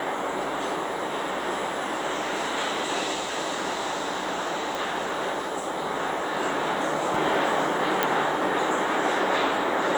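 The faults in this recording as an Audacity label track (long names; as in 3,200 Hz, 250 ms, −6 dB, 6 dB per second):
4.750000	4.750000	click
8.030000	8.030000	click −7 dBFS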